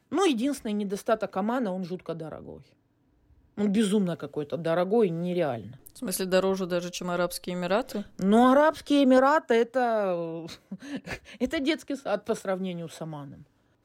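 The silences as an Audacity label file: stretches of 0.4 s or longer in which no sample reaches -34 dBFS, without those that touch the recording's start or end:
2.550000	3.580000	silence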